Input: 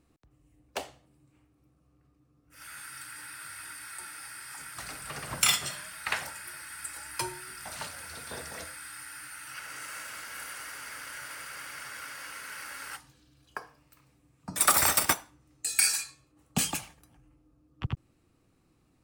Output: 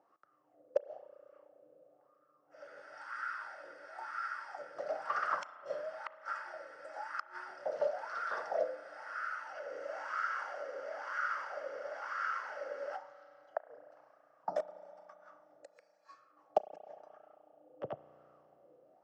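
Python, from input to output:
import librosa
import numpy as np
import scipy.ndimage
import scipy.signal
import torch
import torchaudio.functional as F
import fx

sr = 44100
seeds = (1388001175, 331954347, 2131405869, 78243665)

y = fx.gate_flip(x, sr, shuts_db=-20.0, range_db=-36)
y = fx.cabinet(y, sr, low_hz=210.0, low_slope=12, high_hz=6200.0, hz=(250.0, 580.0, 1000.0, 2400.0, 3800.0, 5500.0), db=(-5, 8, -8, -9, -8, 6))
y = fx.wah_lfo(y, sr, hz=1.0, low_hz=500.0, high_hz=1300.0, q=6.6)
y = fx.rev_spring(y, sr, rt60_s=3.4, pass_ms=(33,), chirp_ms=60, drr_db=15.0)
y = F.gain(torch.from_numpy(y), 17.0).numpy()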